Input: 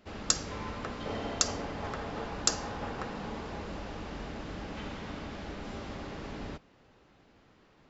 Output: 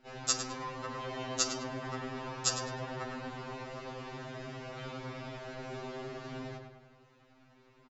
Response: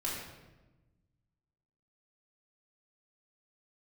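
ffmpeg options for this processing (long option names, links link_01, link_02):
-filter_complex "[0:a]bandreject=frequency=3300:width=30,asplit=2[link_01][link_02];[link_02]adelay=103,lowpass=frequency=3100:poles=1,volume=-5dB,asplit=2[link_03][link_04];[link_04]adelay=103,lowpass=frequency=3100:poles=1,volume=0.53,asplit=2[link_05][link_06];[link_06]adelay=103,lowpass=frequency=3100:poles=1,volume=0.53,asplit=2[link_07][link_08];[link_08]adelay=103,lowpass=frequency=3100:poles=1,volume=0.53,asplit=2[link_09][link_10];[link_10]adelay=103,lowpass=frequency=3100:poles=1,volume=0.53,asplit=2[link_11][link_12];[link_12]adelay=103,lowpass=frequency=3100:poles=1,volume=0.53,asplit=2[link_13][link_14];[link_14]adelay=103,lowpass=frequency=3100:poles=1,volume=0.53[link_15];[link_01][link_03][link_05][link_07][link_09][link_11][link_13][link_15]amix=inputs=8:normalize=0,afftfilt=real='re*2.45*eq(mod(b,6),0)':imag='im*2.45*eq(mod(b,6),0)':win_size=2048:overlap=0.75"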